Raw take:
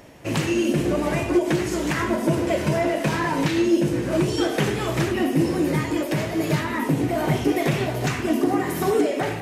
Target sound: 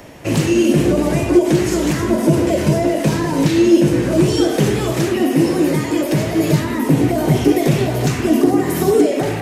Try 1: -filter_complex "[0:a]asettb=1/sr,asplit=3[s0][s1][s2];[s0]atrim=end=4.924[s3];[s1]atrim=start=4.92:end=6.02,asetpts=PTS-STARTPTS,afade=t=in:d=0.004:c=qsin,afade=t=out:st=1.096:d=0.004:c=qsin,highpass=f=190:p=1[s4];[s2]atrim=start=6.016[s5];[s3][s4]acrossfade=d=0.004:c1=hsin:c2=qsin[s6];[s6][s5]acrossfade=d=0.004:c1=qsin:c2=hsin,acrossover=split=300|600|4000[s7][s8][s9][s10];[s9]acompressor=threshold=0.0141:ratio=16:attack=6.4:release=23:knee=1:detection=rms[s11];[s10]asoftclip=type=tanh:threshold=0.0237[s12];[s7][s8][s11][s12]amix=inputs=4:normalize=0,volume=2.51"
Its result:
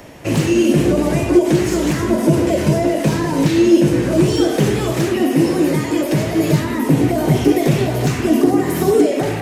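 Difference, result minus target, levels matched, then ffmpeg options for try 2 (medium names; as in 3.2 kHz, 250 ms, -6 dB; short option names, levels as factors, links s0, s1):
saturation: distortion +10 dB
-filter_complex "[0:a]asettb=1/sr,asplit=3[s0][s1][s2];[s0]atrim=end=4.924[s3];[s1]atrim=start=4.92:end=6.02,asetpts=PTS-STARTPTS,afade=t=in:d=0.004:c=qsin,afade=t=out:st=1.096:d=0.004:c=qsin,highpass=f=190:p=1[s4];[s2]atrim=start=6.016[s5];[s3][s4]acrossfade=d=0.004:c1=hsin:c2=qsin[s6];[s6][s5]acrossfade=d=0.004:c1=qsin:c2=hsin,acrossover=split=300|600|4000[s7][s8][s9][s10];[s9]acompressor=threshold=0.0141:ratio=16:attack=6.4:release=23:knee=1:detection=rms[s11];[s10]asoftclip=type=tanh:threshold=0.0596[s12];[s7][s8][s11][s12]amix=inputs=4:normalize=0,volume=2.51"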